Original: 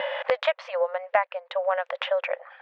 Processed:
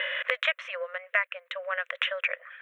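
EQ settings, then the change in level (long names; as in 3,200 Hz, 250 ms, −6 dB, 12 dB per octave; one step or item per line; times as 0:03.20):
high-pass filter 990 Hz 6 dB per octave
spectral tilt +2 dB per octave
phaser with its sweep stopped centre 2,000 Hz, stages 4
+4.0 dB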